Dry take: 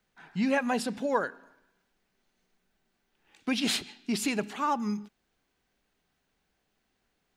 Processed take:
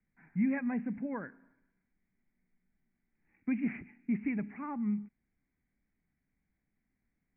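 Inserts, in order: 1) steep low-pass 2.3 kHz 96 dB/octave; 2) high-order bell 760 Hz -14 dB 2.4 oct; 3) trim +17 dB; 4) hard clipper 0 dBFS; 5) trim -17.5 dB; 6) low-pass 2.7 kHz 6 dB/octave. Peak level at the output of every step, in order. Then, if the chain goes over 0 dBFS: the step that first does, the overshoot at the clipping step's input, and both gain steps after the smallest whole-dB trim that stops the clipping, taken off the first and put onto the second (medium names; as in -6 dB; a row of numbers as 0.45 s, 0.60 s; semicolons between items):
-13.5 dBFS, -20.5 dBFS, -3.5 dBFS, -3.5 dBFS, -21.0 dBFS, -21.0 dBFS; nothing clips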